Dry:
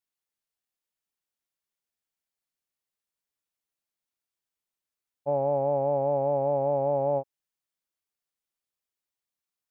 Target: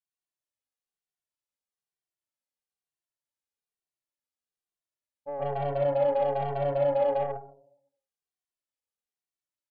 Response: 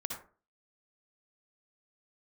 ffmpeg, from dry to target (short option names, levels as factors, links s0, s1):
-filter_complex "[1:a]atrim=start_sample=2205,asetrate=22491,aresample=44100[s0];[0:a][s0]afir=irnorm=-1:irlink=0,aeval=exprs='0.447*(cos(1*acos(clip(val(0)/0.447,-1,1)))-cos(1*PI/2))+0.0178*(cos(6*acos(clip(val(0)/0.447,-1,1)))-cos(6*PI/2))+0.0126*(cos(7*acos(clip(val(0)/0.447,-1,1)))-cos(7*PI/2))':c=same,asplit=2[s1][s2];[s2]adelay=2.1,afreqshift=-1.1[s3];[s1][s3]amix=inputs=2:normalize=1,volume=0.473"